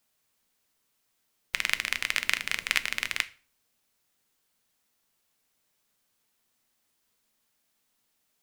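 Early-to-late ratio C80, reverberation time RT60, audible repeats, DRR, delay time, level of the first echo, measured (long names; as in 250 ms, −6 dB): 25.0 dB, 0.40 s, no echo audible, 12.0 dB, no echo audible, no echo audible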